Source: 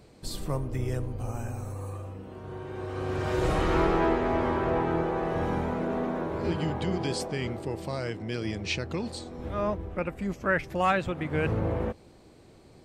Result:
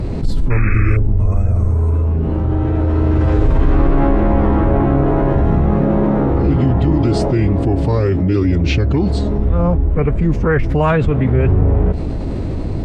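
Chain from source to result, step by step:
RIAA equalisation playback
phase-vocoder pitch shift with formants kept −3 semitones
sound drawn into the spectrogram noise, 0:00.50–0:00.97, 1,100–2,600 Hz −33 dBFS
envelope flattener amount 70%

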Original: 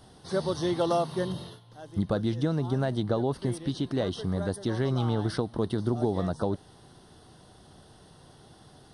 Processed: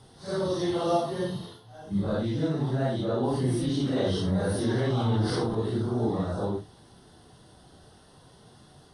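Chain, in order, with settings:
random phases in long frames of 200 ms
0:03.23–0:05.55: envelope flattener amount 50%

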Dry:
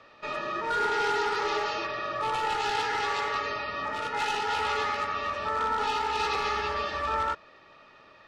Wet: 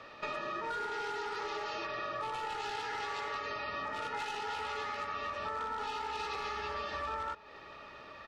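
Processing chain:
downward compressor 8 to 1, threshold −39 dBFS, peak gain reduction 15 dB
slap from a distant wall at 200 metres, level −18 dB
level +3.5 dB

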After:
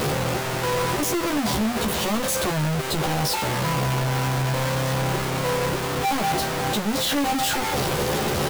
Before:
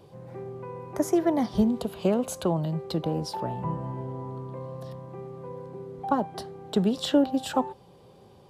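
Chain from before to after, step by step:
sign of each sample alone
double-tracking delay 14 ms −3.5 dB
level +4 dB

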